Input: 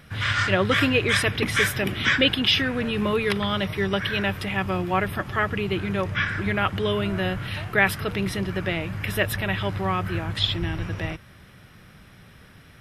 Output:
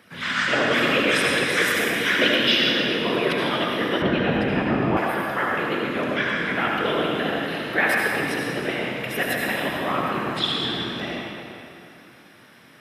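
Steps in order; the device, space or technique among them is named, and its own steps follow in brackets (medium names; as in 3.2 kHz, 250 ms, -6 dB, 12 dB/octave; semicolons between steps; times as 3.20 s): whispering ghost (whisper effect; high-pass 230 Hz 12 dB/octave; reverberation RT60 2.7 s, pre-delay 64 ms, DRR -2.5 dB); 4.02–4.97 s: RIAA curve playback; trim -2 dB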